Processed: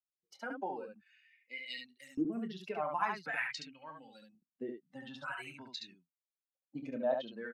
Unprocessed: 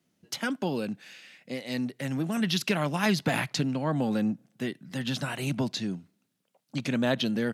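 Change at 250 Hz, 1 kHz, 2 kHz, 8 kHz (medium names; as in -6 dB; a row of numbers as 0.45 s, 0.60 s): -14.5 dB, -4.0 dB, -7.5 dB, -20.0 dB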